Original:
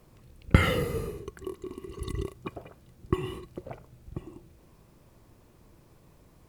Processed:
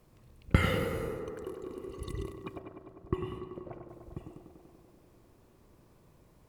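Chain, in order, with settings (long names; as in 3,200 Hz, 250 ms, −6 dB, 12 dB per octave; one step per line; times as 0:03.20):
0:02.59–0:03.89: high-shelf EQ 3,000 Hz −11 dB
tape delay 98 ms, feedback 88%, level −6 dB, low-pass 2,200 Hz
level −5 dB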